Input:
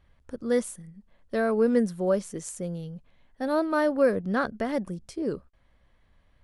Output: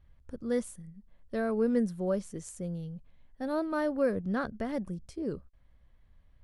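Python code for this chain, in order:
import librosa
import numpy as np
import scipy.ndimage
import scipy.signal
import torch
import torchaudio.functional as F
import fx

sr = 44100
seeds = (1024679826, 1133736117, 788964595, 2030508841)

y = fx.low_shelf(x, sr, hz=170.0, db=11.0)
y = F.gain(torch.from_numpy(y), -7.5).numpy()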